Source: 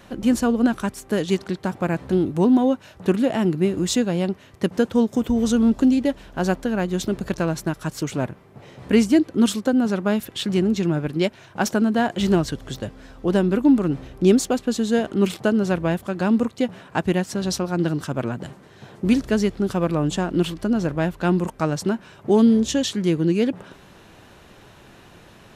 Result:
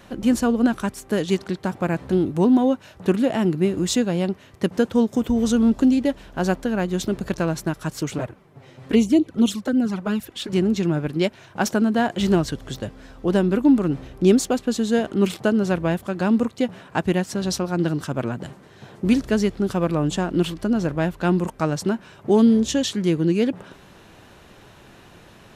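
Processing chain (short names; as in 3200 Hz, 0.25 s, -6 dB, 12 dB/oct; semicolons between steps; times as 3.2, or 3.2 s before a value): 8.18–10.53 envelope flanger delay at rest 9.6 ms, full sweep at -13.5 dBFS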